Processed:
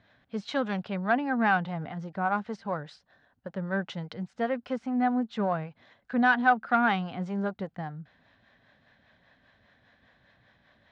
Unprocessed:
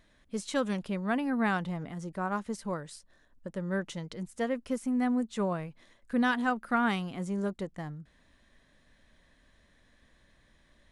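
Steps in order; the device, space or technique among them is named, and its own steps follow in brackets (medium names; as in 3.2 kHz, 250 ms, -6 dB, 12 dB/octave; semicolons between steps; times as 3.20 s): guitar amplifier with harmonic tremolo (harmonic tremolo 5 Hz, depth 50%, crossover 400 Hz; saturation -20 dBFS, distortion -21 dB; cabinet simulation 100–4500 Hz, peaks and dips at 110 Hz +8 dB, 340 Hz -5 dB, 760 Hz +9 dB, 1.5 kHz +6 dB); trim +4 dB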